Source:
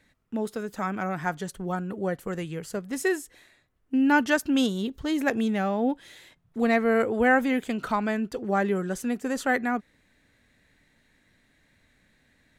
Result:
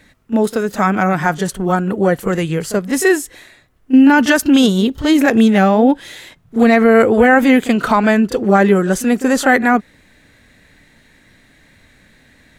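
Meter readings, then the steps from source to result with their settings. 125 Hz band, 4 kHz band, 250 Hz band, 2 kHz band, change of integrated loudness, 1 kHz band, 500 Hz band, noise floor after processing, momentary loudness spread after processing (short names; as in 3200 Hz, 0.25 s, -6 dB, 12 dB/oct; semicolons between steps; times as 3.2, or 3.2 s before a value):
+14.5 dB, +13.0 dB, +14.0 dB, +11.5 dB, +13.0 dB, +12.0 dB, +13.0 dB, -51 dBFS, 9 LU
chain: pre-echo 31 ms -13.5 dB; maximiser +15.5 dB; gain -1 dB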